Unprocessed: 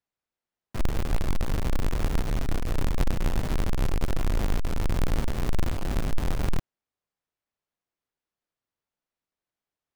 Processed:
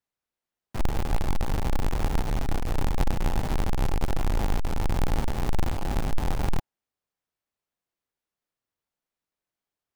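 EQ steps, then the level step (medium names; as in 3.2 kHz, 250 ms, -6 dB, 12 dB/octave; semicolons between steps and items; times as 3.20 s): dynamic bell 830 Hz, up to +8 dB, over -57 dBFS, Q 4.5; 0.0 dB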